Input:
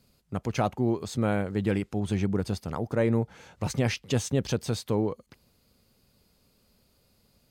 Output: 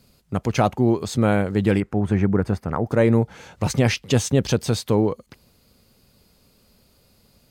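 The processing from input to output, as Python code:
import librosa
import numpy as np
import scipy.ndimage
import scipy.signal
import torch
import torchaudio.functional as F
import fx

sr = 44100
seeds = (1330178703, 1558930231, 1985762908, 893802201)

y = fx.high_shelf_res(x, sr, hz=2500.0, db=-11.0, q=1.5, at=(1.8, 2.87))
y = y * 10.0 ** (7.5 / 20.0)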